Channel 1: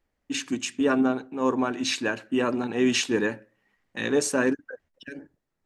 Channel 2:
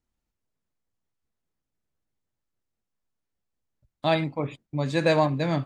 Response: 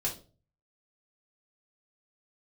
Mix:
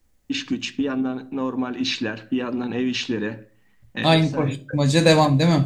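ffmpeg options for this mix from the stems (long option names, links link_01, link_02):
-filter_complex "[0:a]lowpass=frequency=4100:width=0.5412,lowpass=frequency=4100:width=1.3066,acompressor=threshold=-28dB:ratio=5,volume=2dB,asplit=2[link_01][link_02];[link_02]volume=-16dB[link_03];[1:a]volume=2dB,asplit=3[link_04][link_05][link_06];[link_05]volume=-10dB[link_07];[link_06]apad=whole_len=249592[link_08];[link_01][link_08]sidechaincompress=threshold=-32dB:ratio=8:attack=16:release=318[link_09];[2:a]atrim=start_sample=2205[link_10];[link_03][link_07]amix=inputs=2:normalize=0[link_11];[link_11][link_10]afir=irnorm=-1:irlink=0[link_12];[link_09][link_04][link_12]amix=inputs=3:normalize=0,bass=frequency=250:gain=8,treble=frequency=4000:gain=13"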